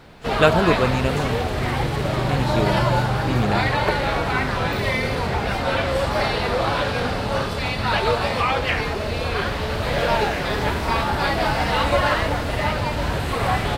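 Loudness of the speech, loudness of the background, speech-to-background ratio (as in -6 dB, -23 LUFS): -24.5 LUFS, -22.0 LUFS, -2.5 dB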